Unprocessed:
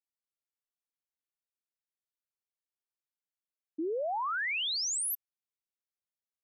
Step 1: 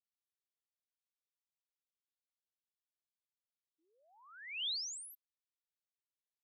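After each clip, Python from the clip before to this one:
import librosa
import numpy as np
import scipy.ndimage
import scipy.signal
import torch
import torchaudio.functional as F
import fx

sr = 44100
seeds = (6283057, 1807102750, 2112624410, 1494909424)

y = fx.ladder_bandpass(x, sr, hz=4100.0, resonance_pct=40)
y = F.gain(torch.from_numpy(y), 2.5).numpy()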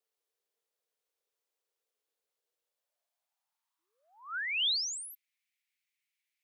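y = fx.filter_sweep_highpass(x, sr, from_hz=450.0, to_hz=2200.0, start_s=2.51, end_s=5.02, q=5.2)
y = F.gain(torch.from_numpy(y), 6.0).numpy()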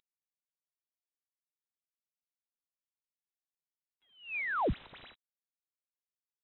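y = fx.cvsd(x, sr, bps=64000)
y = fx.freq_invert(y, sr, carrier_hz=3900)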